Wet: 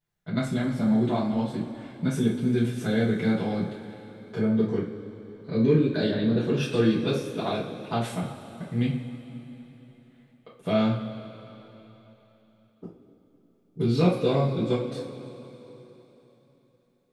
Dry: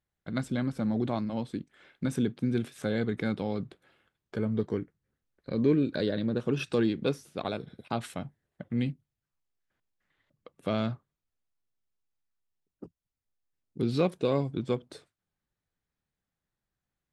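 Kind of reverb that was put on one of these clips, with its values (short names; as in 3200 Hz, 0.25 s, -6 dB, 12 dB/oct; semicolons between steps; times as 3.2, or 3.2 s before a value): two-slope reverb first 0.35 s, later 3.7 s, from -18 dB, DRR -9 dB; gain -4.5 dB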